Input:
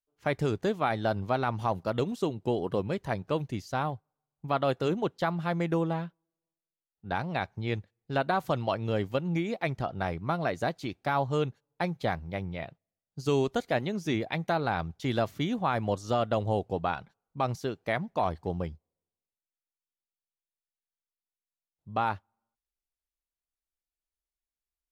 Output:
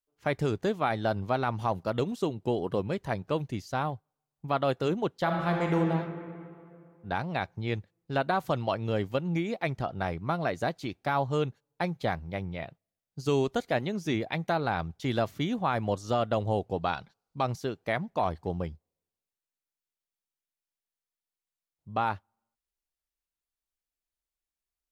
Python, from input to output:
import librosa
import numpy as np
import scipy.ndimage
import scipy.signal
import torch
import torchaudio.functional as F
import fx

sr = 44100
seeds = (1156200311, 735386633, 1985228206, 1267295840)

y = fx.reverb_throw(x, sr, start_s=5.22, length_s=0.53, rt60_s=2.4, drr_db=0.5)
y = fx.peak_eq(y, sr, hz=4600.0, db=9.0, octaves=0.9, at=(16.81, 17.43))